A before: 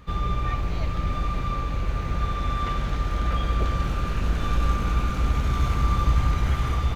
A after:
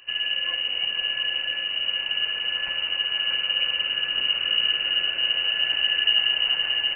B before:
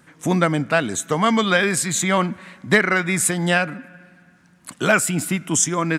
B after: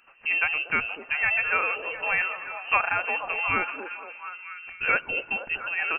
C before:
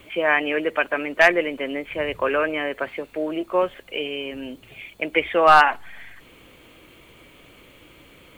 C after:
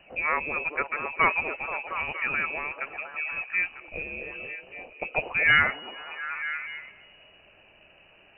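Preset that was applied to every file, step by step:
frequency inversion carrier 2.9 kHz; repeats whose band climbs or falls 237 ms, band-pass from 410 Hz, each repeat 0.7 oct, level -3 dB; peak normalisation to -9 dBFS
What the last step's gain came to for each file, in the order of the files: -3.5 dB, -7.0 dB, -7.0 dB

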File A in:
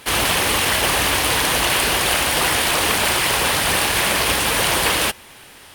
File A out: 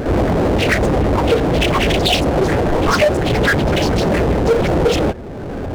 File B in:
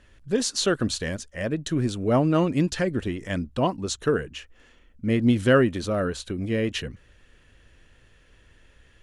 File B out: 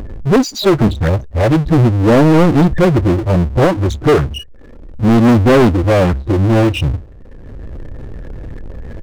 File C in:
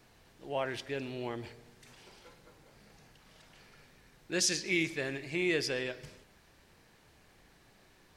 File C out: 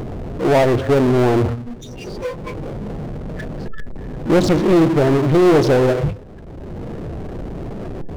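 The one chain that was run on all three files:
median filter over 41 samples; spectral noise reduction 24 dB; gate -53 dBFS, range -11 dB; in parallel at -1 dB: upward compressor, threshold -27 dBFS; on the sum: loudest bins only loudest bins 32; hard clipper -17 dBFS; resampled via 16 kHz; power-law waveshaper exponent 0.5; loudspeaker Doppler distortion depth 0.64 ms; peak normalisation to -6 dBFS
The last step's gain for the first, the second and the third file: +17.0 dB, +10.5 dB, +12.5 dB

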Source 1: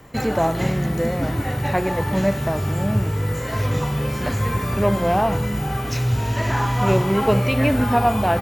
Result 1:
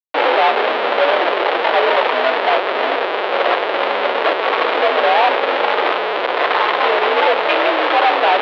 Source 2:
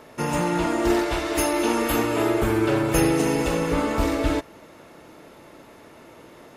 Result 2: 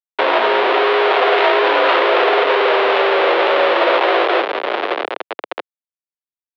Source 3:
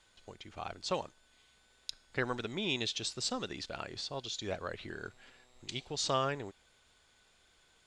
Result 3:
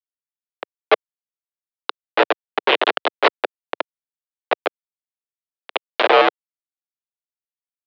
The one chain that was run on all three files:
square wave that keeps the level; in parallel at -1 dB: peak limiter -17 dBFS; on the sum: echo that smears into a reverb 578 ms, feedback 66%, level -15.5 dB; Schmitt trigger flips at -21 dBFS; mistuned SSB +64 Hz 380–3600 Hz; peak normalisation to -1.5 dBFS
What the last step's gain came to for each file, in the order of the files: +2.0 dB, +4.5 dB, +24.0 dB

